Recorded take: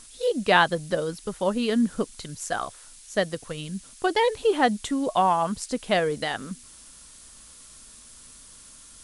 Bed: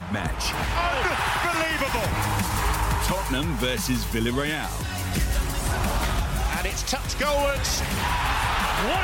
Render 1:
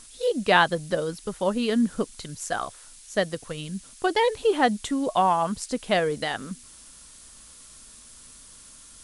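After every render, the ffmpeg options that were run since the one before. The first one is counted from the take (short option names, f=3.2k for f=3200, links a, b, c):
-af anull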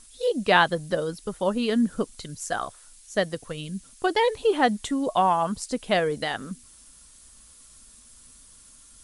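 -af "afftdn=nr=6:nf=-49"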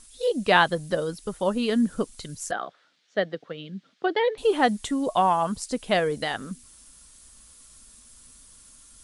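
-filter_complex "[0:a]asettb=1/sr,asplit=3[a][b][c];[a]atrim=end=2.514[d];[b]atrim=start=2.51:end=4.38,asetpts=PTS-STARTPTS,afade=t=in:d=0.004:c=qsin,afade=t=out:st=1.866:d=0.004:c=qsin,highpass=f=180:w=0.5412,highpass=f=180:w=1.3066,equalizer=f=240:t=q:w=4:g=-5,equalizer=f=1k:t=q:w=4:g=-8,equalizer=f=2.6k:t=q:w=4:g=-5,lowpass=f=3.6k:w=0.5412,lowpass=f=3.6k:w=1.3066[e];[c]atrim=start=4.376[f];[d][e]acrossfade=d=0.004:c1=hsin:c2=qsin[g];[g][f]acrossfade=d=0.004:c1=qsin:c2=hsin"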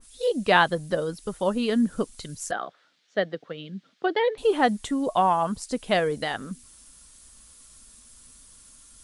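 -af "adynamicequalizer=threshold=0.01:dfrequency=2300:dqfactor=0.7:tfrequency=2300:tqfactor=0.7:attack=5:release=100:ratio=0.375:range=1.5:mode=cutabove:tftype=highshelf"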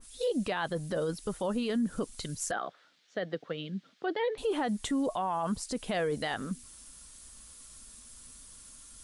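-af "acompressor=threshold=-24dB:ratio=2,alimiter=limit=-23.5dB:level=0:latency=1:release=18"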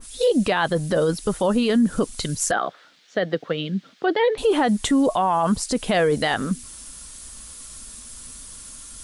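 -af "volume=11.5dB"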